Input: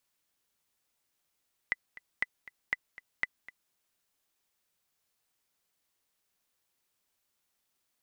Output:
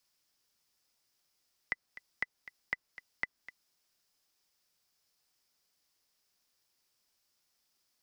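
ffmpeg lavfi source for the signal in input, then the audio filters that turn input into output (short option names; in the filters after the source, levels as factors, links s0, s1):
-f lavfi -i "aevalsrc='pow(10,(-15-18.5*gte(mod(t,2*60/238),60/238))/20)*sin(2*PI*2000*mod(t,60/238))*exp(-6.91*mod(t,60/238)/0.03)':d=2.01:s=44100"
-filter_complex "[0:a]acrossover=split=270|700|2000[s0][s1][s2][s3];[s3]alimiter=level_in=2.24:limit=0.0631:level=0:latency=1:release=249,volume=0.447[s4];[s0][s1][s2][s4]amix=inputs=4:normalize=0,equalizer=f=5100:w=3:g=10"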